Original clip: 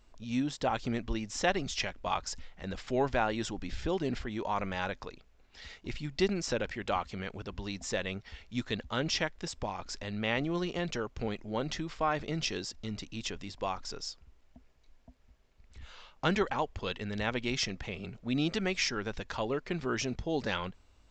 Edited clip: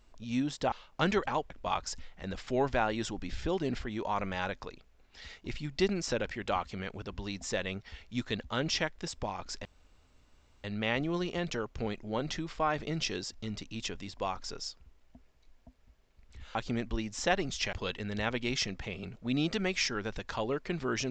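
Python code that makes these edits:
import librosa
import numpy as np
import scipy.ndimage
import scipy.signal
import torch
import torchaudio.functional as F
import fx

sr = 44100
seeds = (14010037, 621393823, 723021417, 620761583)

y = fx.edit(x, sr, fx.swap(start_s=0.72, length_s=1.18, other_s=15.96, other_length_s=0.78),
    fx.insert_room_tone(at_s=10.05, length_s=0.99), tone=tone)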